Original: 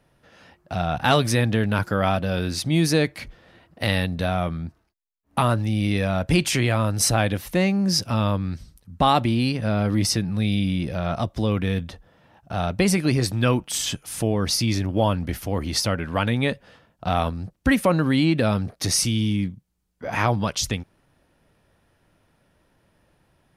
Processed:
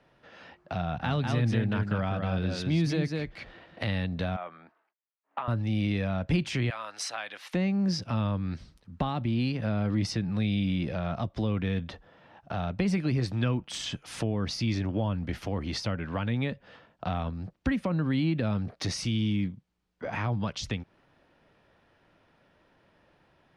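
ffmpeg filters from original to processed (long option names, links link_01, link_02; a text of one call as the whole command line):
ffmpeg -i in.wav -filter_complex "[0:a]asettb=1/sr,asplit=3[link_01][link_02][link_03];[link_01]atrim=end=0.834[link_04];[link_02]atrim=start=0.83:end=3.86,asetpts=PTS-STARTPTS,afade=type=in:duration=0.004:curve=qsin,afade=type=out:start_time=3.026:duration=0.004:curve=qsin,aecho=1:1:195:0.562,atrim=end_sample=133623[link_05];[link_03]atrim=start=3.856[link_06];[link_04][link_05]acrossfade=duration=0.004:curve1=hsin:curve2=qsin[link_07];[link_07][link_06]acrossfade=duration=0.004:curve1=qsin:curve2=hsin,asettb=1/sr,asplit=3[link_08][link_09][link_10];[link_08]atrim=end=4.364[link_11];[link_09]atrim=start=4.36:end=5.48,asetpts=PTS-STARTPTS,afade=type=in:duration=0.004:curve=qsin,afade=type=out:start_time=1.116:duration=0.004:curve=qsin,highpass=680,lowpass=2100[link_12];[link_10]atrim=start=5.476[link_13];[link_11][link_12]acrossfade=duration=0.004:curve1=hsin:curve2=qsin[link_14];[link_14][link_13]acrossfade=duration=0.004:curve1=qsin:curve2=hsin,asettb=1/sr,asplit=3[link_15][link_16][link_17];[link_15]atrim=end=6.704[link_18];[link_16]atrim=start=6.7:end=7.54,asetpts=PTS-STARTPTS,afade=type=in:duration=0.004:curve=qsin,afade=type=out:start_time=0.836:duration=0.004:curve=qsin,highpass=1000[link_19];[link_17]atrim=start=7.536[link_20];[link_18][link_19]acrossfade=duration=0.004:curve1=hsin:curve2=qsin[link_21];[link_21][link_20]acrossfade=duration=0.004:curve1=qsin:curve2=hsin,lowpass=4100,lowshelf=frequency=170:gain=-10,acrossover=split=210[link_22][link_23];[link_23]acompressor=threshold=-36dB:ratio=4[link_24];[link_22][link_24]amix=inputs=2:normalize=0,volume=2dB" out.wav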